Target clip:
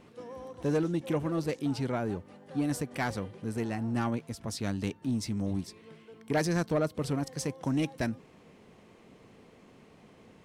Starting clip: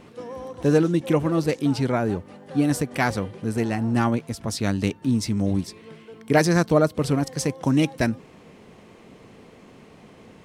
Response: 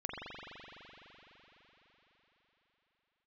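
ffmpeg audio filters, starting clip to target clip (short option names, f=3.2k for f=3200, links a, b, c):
-af "asoftclip=type=tanh:threshold=-12dB,volume=-8dB"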